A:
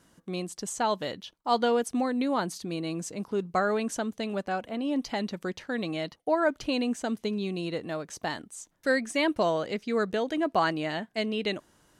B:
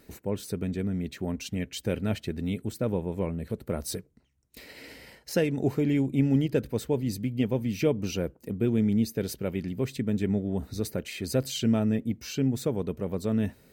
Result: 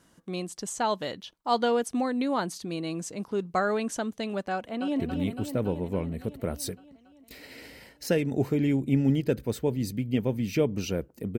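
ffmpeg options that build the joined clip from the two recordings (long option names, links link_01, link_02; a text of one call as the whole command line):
ffmpeg -i cue0.wav -i cue1.wav -filter_complex "[0:a]apad=whole_dur=11.38,atrim=end=11.38,atrim=end=5.002[link_01];[1:a]atrim=start=2.258:end=8.64[link_02];[link_01][link_02]acrossfade=duration=0.004:curve1=hsin:curve2=hsin,asplit=2[link_03][link_04];[link_04]afade=type=in:start_time=4.53:duration=0.01,afade=type=out:start_time=5:duration=0.01,aecho=0:1:280|560|840|1120|1400|1680|1960|2240|2520|2800|3080:0.473151|0.331206|0.231844|0.162291|0.113604|0.0795225|0.0556658|0.038966|0.0272762|0.0190934|0.0133654[link_05];[link_03][link_05]amix=inputs=2:normalize=0" out.wav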